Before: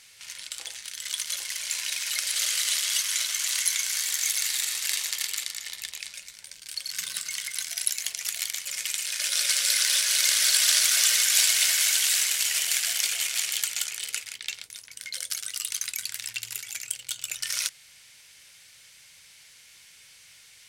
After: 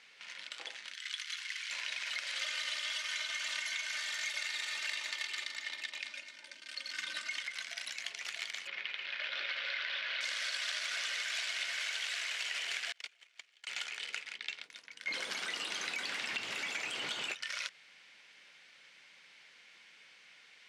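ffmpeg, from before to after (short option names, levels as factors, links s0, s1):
-filter_complex "[0:a]asplit=3[s0][s1][s2];[s0]afade=t=out:st=0.93:d=0.02[s3];[s1]highpass=f=1300:w=0.5412,highpass=f=1300:w=1.3066,afade=t=in:st=0.93:d=0.02,afade=t=out:st=1.69:d=0.02[s4];[s2]afade=t=in:st=1.69:d=0.02[s5];[s3][s4][s5]amix=inputs=3:normalize=0,asettb=1/sr,asplit=3[s6][s7][s8];[s6]atrim=end=2.414[s9];[s7]atrim=start=2.41:end=7.43,asetpts=PTS-STARTPTS,afade=t=in:d=0.004:c=qsin,afade=t=out:st=5.016:d=0.004:c=qsin,aecho=1:1:3.3:0.83,atrim=end_sample=221382[s10];[s8]atrim=start=7.426[s11];[s9][s10]acrossfade=d=0.004:c1=hsin:c2=qsin[s12];[s12][s11]acrossfade=d=0.004:c1=qsin:c2=hsin,asettb=1/sr,asplit=3[s13][s14][s15];[s13]atrim=end=8.674[s16];[s14]atrim=start=8.67:end=10.21,asetpts=PTS-STARTPTS,afade=t=in:d=0.004:c=qsin,afade=t=out:st=1.536:d=0.004:c=qsin,lowpass=f=3700:w=0.5412,lowpass=f=3700:w=1.3066[s17];[s15]atrim=start=10.206[s18];[s16][s17]acrossfade=d=0.004:c1=hsin:c2=qsin[s19];[s19][s18]acrossfade=d=0.004:c1=qsin:c2=hsin,asettb=1/sr,asplit=3[s20][s21][s22];[s20]atrim=end=11.774[s23];[s21]atrim=start=11.77:end=12.42,asetpts=PTS-STARTPTS,afade=t=in:d=0.004:c=qsin,afade=t=out:st=0.646:d=0.004:c=qsin,highpass=f=400:w=0.5412,highpass=f=400:w=1.3066[s24];[s22]atrim=start=12.416[s25];[s23][s24]acrossfade=d=0.004:c1=hsin:c2=qsin[s26];[s26][s25]acrossfade=d=0.004:c1=qsin:c2=hsin,asettb=1/sr,asplit=3[s27][s28][s29];[s27]atrim=end=12.924[s30];[s28]atrim=start=12.92:end=13.67,asetpts=PTS-STARTPTS,afade=t=in:d=0.004:c=qsin,afade=t=out:st=0.746:d=0.004:c=qsin,agate=range=0.0251:threshold=0.0631:ratio=16:release=100:detection=peak[s31];[s29]atrim=start=13.666[s32];[s30][s31]acrossfade=d=0.004:c1=hsin:c2=qsin[s33];[s33][s32]acrossfade=d=0.004:c1=qsin:c2=hsin,asettb=1/sr,asplit=3[s34][s35][s36];[s34]atrim=end=15.074[s37];[s35]atrim=start=15.07:end=17.34,asetpts=PTS-STARTPTS,afade=t=in:d=0.004:c=qsin,afade=t=out:st=2.266:d=0.004:c=qsin,aeval=exprs='val(0)+0.5*0.0473*sgn(val(0))':c=same[s38];[s36]atrim=start=17.336[s39];[s37][s38]acrossfade=d=0.004:c1=hsin:c2=qsin[s40];[s40][s39]acrossfade=d=0.004:c1=qsin:c2=hsin,lowpass=2700,acompressor=threshold=0.02:ratio=6,highpass=f=200:w=0.5412,highpass=f=200:w=1.3066"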